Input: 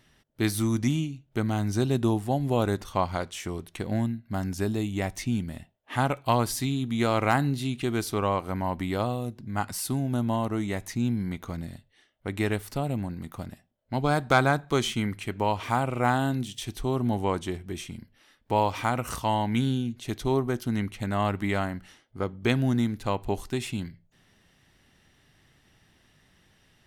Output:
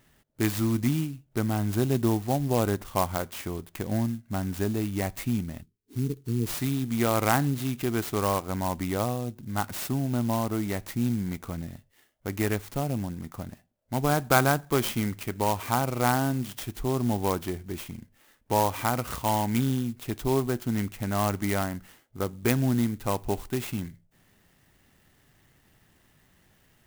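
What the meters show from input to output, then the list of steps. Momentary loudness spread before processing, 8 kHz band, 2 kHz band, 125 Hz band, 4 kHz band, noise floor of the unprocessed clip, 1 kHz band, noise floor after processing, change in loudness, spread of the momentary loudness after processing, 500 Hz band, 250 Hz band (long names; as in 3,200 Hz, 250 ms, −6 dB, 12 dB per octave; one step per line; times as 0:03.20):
10 LU, +2.5 dB, −1.5 dB, 0.0 dB, −1.5 dB, −65 dBFS, −1.0 dB, −65 dBFS, 0.0 dB, 11 LU, −0.5 dB, 0.0 dB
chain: time-frequency box erased 0:05.61–0:06.56, 470–4,300 Hz
converter with an unsteady clock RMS 0.057 ms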